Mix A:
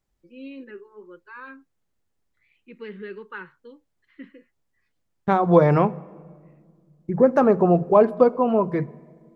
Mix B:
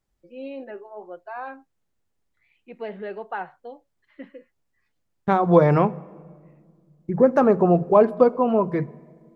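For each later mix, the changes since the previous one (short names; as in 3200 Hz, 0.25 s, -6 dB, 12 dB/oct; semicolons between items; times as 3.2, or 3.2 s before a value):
first voice: remove Butterworth band-stop 700 Hz, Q 1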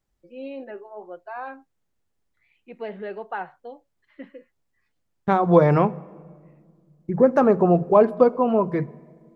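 none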